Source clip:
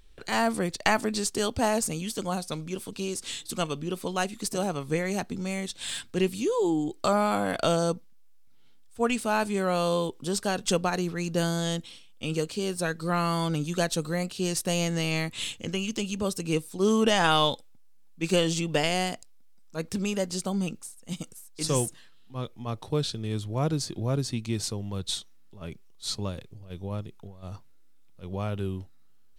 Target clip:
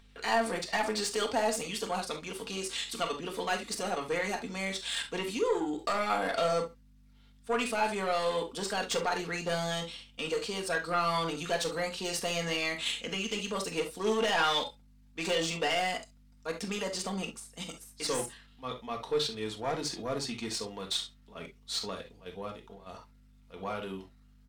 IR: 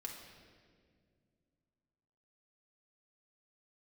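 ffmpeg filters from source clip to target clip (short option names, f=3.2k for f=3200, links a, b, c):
-filter_complex "[0:a]highpass=f=260:p=1,asoftclip=type=tanh:threshold=-24dB,aecho=1:1:89:0.0668,asplit=2[a][b];[b]highpass=f=720:p=1,volume=14dB,asoftclip=type=tanh:threshold=-11dB[c];[a][c]amix=inputs=2:normalize=0,lowpass=f=3.5k:p=1,volume=-6dB,aeval=exprs='val(0)+0.00224*(sin(2*PI*50*n/s)+sin(2*PI*2*50*n/s)/2+sin(2*PI*3*50*n/s)/3+sin(2*PI*4*50*n/s)/4+sin(2*PI*5*50*n/s)/5)':c=same[d];[1:a]atrim=start_sample=2205,atrim=end_sample=3969[e];[d][e]afir=irnorm=-1:irlink=0,atempo=1.2"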